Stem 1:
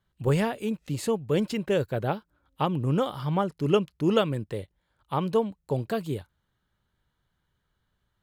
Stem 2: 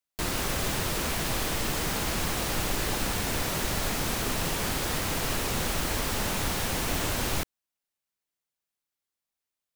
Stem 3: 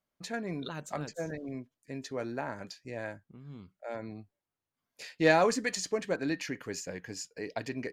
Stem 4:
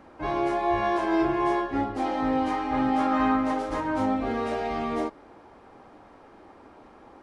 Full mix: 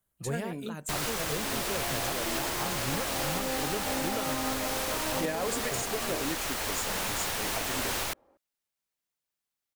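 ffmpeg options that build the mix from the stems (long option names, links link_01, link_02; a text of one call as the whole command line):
ffmpeg -i stem1.wav -i stem2.wav -i stem3.wav -i stem4.wav -filter_complex "[0:a]highshelf=frequency=10000:gain=11,volume=-10.5dB[link_01];[1:a]acrossover=split=440|3000[link_02][link_03][link_04];[link_02]acompressor=threshold=-39dB:ratio=6[link_05];[link_05][link_03][link_04]amix=inputs=3:normalize=0,adelay=700,volume=0dB[link_06];[2:a]deesser=0.65,highshelf=frequency=6700:width_type=q:width=1.5:gain=12.5,volume=-1.5dB[link_07];[3:a]equalizer=frequency=560:width_type=o:width=0.33:gain=12,dynaudnorm=framelen=680:gausssize=5:maxgain=11.5dB,adelay=1150,volume=-19dB[link_08];[link_01][link_06][link_07][link_08]amix=inputs=4:normalize=0,alimiter=limit=-20dB:level=0:latency=1:release=316" out.wav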